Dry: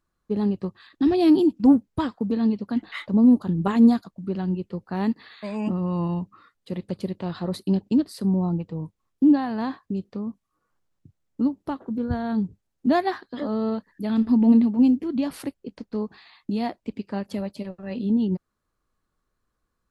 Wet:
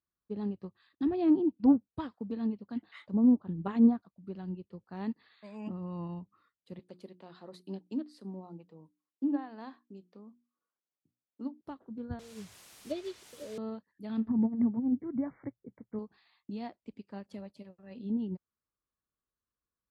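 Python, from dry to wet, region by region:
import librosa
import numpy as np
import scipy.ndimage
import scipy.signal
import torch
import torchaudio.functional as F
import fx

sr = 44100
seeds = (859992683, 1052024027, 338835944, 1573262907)

y = fx.chain(x, sr, fx.highpass(hz=250.0, slope=12),
    fx.hum_notches(base_hz=60, count=6), at=(6.79, 11.61))
y = fx.chain(y, sr, fx.cheby1_bandstop(low_hz=630.0, high_hz=2300.0, order=5),
    fx.comb(ms=2.0, depth=0.81),
    fx.quant_dither(seeds[0], bits=6, dither='triangular'), at=(12.19, 13.58))
y = fx.chain(y, sr, fx.peak_eq(hz=120.0, db=13.5, octaves=0.49),
    fx.over_compress(threshold_db=-17.0, ratio=-0.5),
    fx.brickwall_lowpass(high_hz=2300.0), at=(14.28, 15.99))
y = scipy.signal.sosfilt(scipy.signal.butter(2, 44.0, 'highpass', fs=sr, output='sos'), y)
y = fx.env_lowpass_down(y, sr, base_hz=1500.0, full_db=-15.0)
y = fx.upward_expand(y, sr, threshold_db=-32.0, expansion=1.5)
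y = F.gain(torch.from_numpy(y), -6.5).numpy()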